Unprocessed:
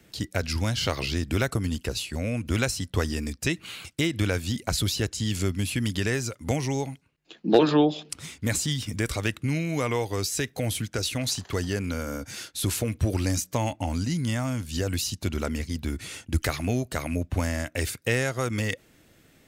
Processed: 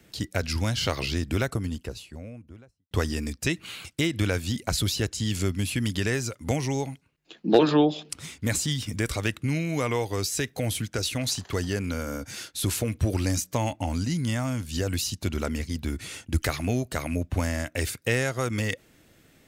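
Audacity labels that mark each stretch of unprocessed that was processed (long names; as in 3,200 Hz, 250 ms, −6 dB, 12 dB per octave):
1.060000	2.910000	fade out and dull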